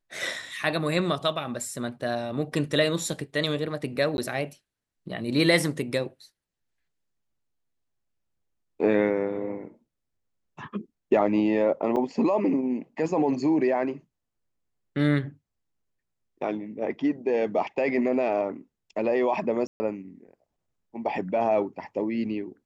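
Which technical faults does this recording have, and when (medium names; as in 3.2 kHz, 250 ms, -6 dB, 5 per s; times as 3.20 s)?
4.17–4.18 s: dropout 11 ms
11.96–11.97 s: dropout 6 ms
19.67–19.80 s: dropout 130 ms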